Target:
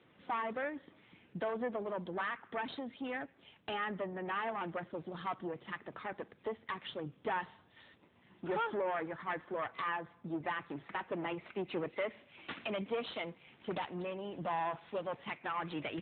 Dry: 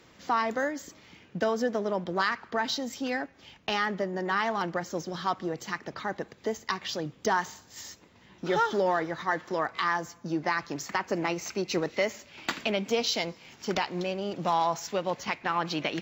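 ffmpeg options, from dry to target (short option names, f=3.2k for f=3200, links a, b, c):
-filter_complex "[0:a]asettb=1/sr,asplit=3[a][b][c];[a]atrim=end=8.484[d];[b]atrim=start=8.48:end=9.69,asetpts=PTS-STARTPTS,afade=t=in:d=0.004:c=qsin,afade=t=out:st=1.206:d=0.004:c=qsin,acrossover=split=2700[e][f];[f]acompressor=threshold=-55dB:ratio=4:attack=1:release=60[g];[e][g]amix=inputs=2:normalize=0[h];[c]atrim=start=9.686[i];[d][h]acrossfade=d=0.004:c1=hsin:c2=qsin[j];[j][i]acrossfade=d=0.004:c1=qsin:c2=hsin,aeval=exprs='(tanh(17.8*val(0)+0.6)-tanh(0.6))/17.8':c=same,volume=-3.5dB" -ar 8000 -c:a libopencore_amrnb -b:a 10200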